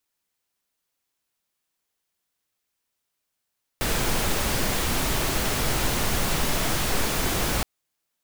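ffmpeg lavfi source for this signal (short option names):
-f lavfi -i "anoisesrc=c=pink:a=0.324:d=3.82:r=44100:seed=1"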